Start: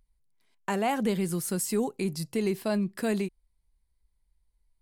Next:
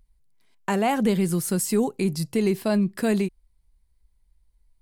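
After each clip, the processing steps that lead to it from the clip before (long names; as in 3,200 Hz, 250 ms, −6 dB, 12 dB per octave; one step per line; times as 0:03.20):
low-shelf EQ 210 Hz +4.5 dB
level +4 dB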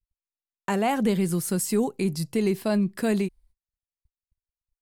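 noise gate −54 dBFS, range −44 dB
level −1.5 dB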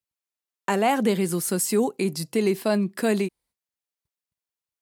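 high-pass filter 230 Hz 12 dB per octave
level +3.5 dB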